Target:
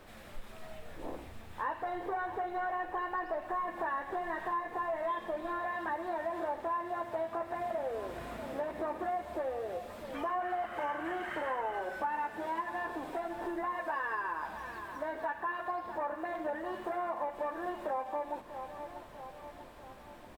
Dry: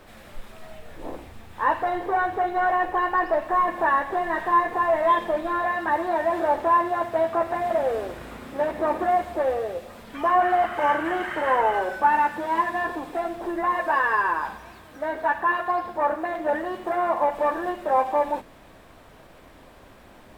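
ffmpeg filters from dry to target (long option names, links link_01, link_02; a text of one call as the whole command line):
ffmpeg -i in.wav -af "aecho=1:1:640|1280|1920|2560|3200:0.133|0.0747|0.0418|0.0234|0.0131,acompressor=threshold=-30dB:ratio=3,volume=-5dB" out.wav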